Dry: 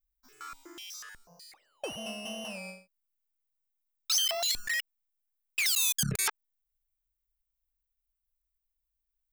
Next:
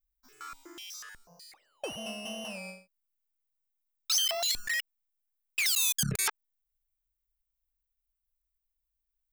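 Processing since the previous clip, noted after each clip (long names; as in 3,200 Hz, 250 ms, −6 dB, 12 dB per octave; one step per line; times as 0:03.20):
no processing that can be heard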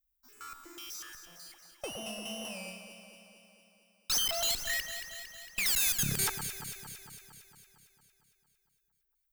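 high-shelf EQ 8,600 Hz +10.5 dB
tube saturation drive 24 dB, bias 0.6
on a send: delay that swaps between a low-pass and a high-pass 114 ms, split 1,700 Hz, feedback 79%, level −7 dB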